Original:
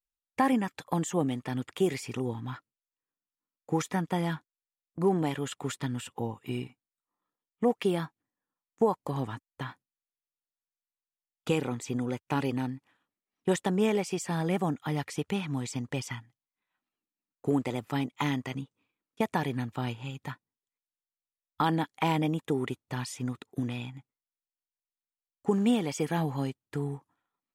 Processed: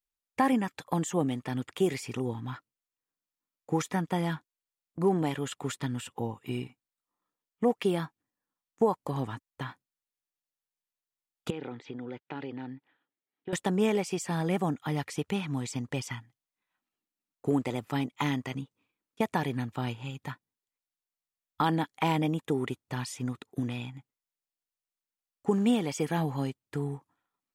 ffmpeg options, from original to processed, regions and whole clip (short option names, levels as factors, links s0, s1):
-filter_complex "[0:a]asettb=1/sr,asplit=3[s0][s1][s2];[s0]atrim=end=11.504[s3];[s1]atrim=start=11.5:end=13.53,asetpts=PTS-STARTPTS,afade=t=in:d=0.004:c=qsin,afade=t=out:st=2.026:d=0.004:c=qsin,acompressor=threshold=0.0316:ratio=10:attack=3.2:release=140:knee=1:detection=peak,highpass=180,equalizer=f=210:t=q:w=4:g=-8,equalizer=f=610:t=q:w=4:g=-4,equalizer=f=1100:t=q:w=4:g=-8,equalizer=f=2600:t=q:w=4:g=-5,lowpass=f=3600:w=0.5412,lowpass=f=3600:w=1.3066[s4];[s2]atrim=start=13.526[s5];[s3][s4]acrossfade=d=0.004:c1=hsin:c2=qsin[s6];[s6][s5]acrossfade=d=0.004:c1=qsin:c2=hsin"